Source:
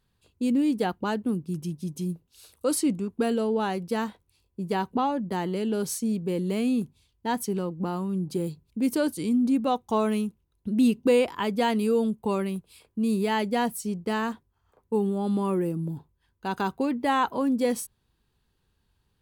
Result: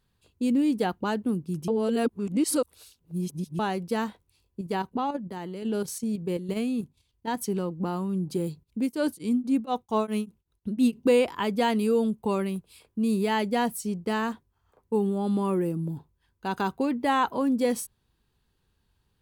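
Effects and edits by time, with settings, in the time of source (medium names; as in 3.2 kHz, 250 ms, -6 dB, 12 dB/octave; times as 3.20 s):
1.68–3.59 s: reverse
4.61–7.43 s: level held to a coarse grid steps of 9 dB
8.63–10.96 s: tremolo of two beating tones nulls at 3.3 Hz -> 6.8 Hz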